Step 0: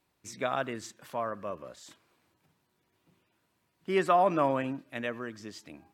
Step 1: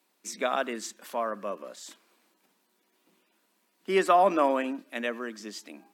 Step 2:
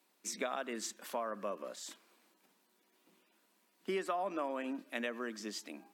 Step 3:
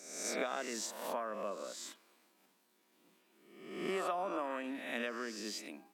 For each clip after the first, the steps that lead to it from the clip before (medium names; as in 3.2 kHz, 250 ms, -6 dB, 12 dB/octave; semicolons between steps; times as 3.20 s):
elliptic high-pass 200 Hz, stop band 40 dB; treble shelf 3.8 kHz +6.5 dB; trim +3 dB
compression 6:1, threshold -32 dBFS, peak gain reduction 14.5 dB; trim -2 dB
reverse spectral sustain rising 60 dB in 0.91 s; trim -2.5 dB